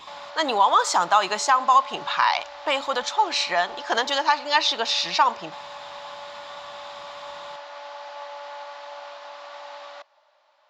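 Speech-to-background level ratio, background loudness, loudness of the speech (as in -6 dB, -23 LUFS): 17.5 dB, -39.0 LUFS, -21.5 LUFS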